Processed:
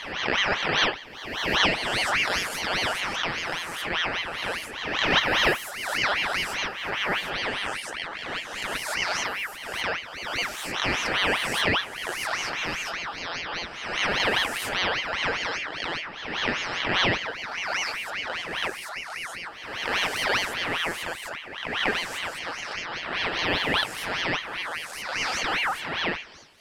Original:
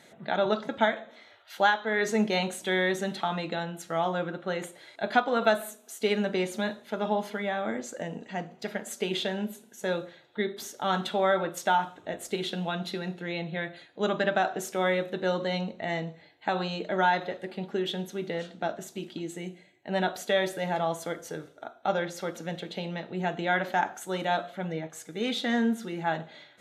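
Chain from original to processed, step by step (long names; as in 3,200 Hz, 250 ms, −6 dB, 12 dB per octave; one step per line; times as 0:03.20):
peak hold with a rise ahead of every peak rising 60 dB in 1.30 s
ring modulator whose carrier an LFO sweeps 1,800 Hz, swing 45%, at 5 Hz
level +1.5 dB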